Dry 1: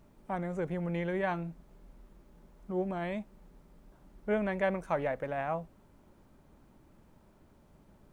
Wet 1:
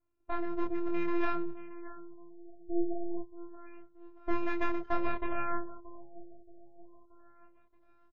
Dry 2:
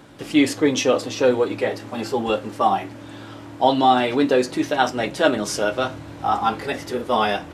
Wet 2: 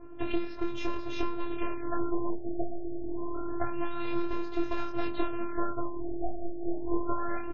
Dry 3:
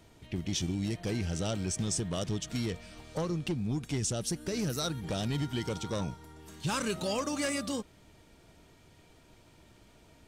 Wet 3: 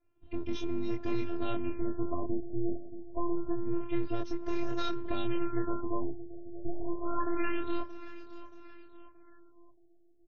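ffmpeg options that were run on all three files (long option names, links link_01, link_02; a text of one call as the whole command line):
ffmpeg -i in.wav -filter_complex "[0:a]highpass=frequency=88:width=0.5412,highpass=frequency=88:width=1.3066,acrossover=split=3800[link_01][link_02];[link_02]acompressor=threshold=-45dB:ratio=4:attack=1:release=60[link_03];[link_01][link_03]amix=inputs=2:normalize=0,aeval=exprs='0.794*(cos(1*acos(clip(val(0)/0.794,-1,1)))-cos(1*PI/2))+0.158*(cos(4*acos(clip(val(0)/0.794,-1,1)))-cos(4*PI/2))':channel_layout=same,afftdn=noise_reduction=23:noise_floor=-43,equalizer=frequency=460:width_type=o:width=0.29:gain=3,acompressor=threshold=-26dB:ratio=16,aeval=exprs='max(val(0),0)':channel_layout=same,aemphasis=mode=reproduction:type=50kf,afftfilt=real='hypot(re,im)*cos(PI*b)':imag='0':win_size=512:overlap=0.75,asplit=2[link_04][link_05];[link_05]adelay=24,volume=-2.5dB[link_06];[link_04][link_06]amix=inputs=2:normalize=0,aecho=1:1:627|1254|1881|2508:0.15|0.0748|0.0374|0.0187,afftfilt=real='re*lt(b*sr/1024,760*pow(7500/760,0.5+0.5*sin(2*PI*0.27*pts/sr)))':imag='im*lt(b*sr/1024,760*pow(7500/760,0.5+0.5*sin(2*PI*0.27*pts/sr)))':win_size=1024:overlap=0.75,volume=7.5dB" out.wav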